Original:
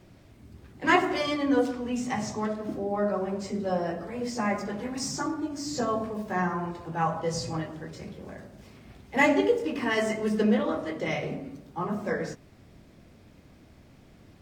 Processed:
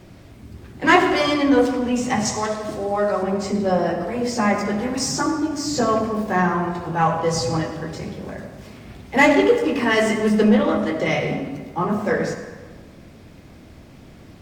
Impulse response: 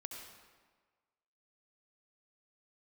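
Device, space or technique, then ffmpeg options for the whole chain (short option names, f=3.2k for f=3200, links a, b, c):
saturated reverb return: -filter_complex "[0:a]asettb=1/sr,asplit=3[a][b][c];[a]atrim=end=2.254[d];[b]atrim=start=2.25:end=3.23,asetpts=PTS-STARTPTS,afade=t=in:d=0.004:c=qsin,afade=t=out:st=0.976:d=0.004:c=qsin,equalizer=f=250:t=o:w=1:g=-11,equalizer=f=4k:t=o:w=1:g=4,equalizer=f=8k:t=o:w=1:g=8[e];[c]atrim=start=3.226[f];[d][e]acrossfade=d=0.004:c1=hsin:c2=qsin[g];[g][f]acrossfade=d=0.004:c1=qsin:c2=hsin,asplit=2[h][i];[1:a]atrim=start_sample=2205[j];[i][j]afir=irnorm=-1:irlink=0,asoftclip=type=tanh:threshold=-25.5dB,volume=3.5dB[k];[h][k]amix=inputs=2:normalize=0,volume=4dB"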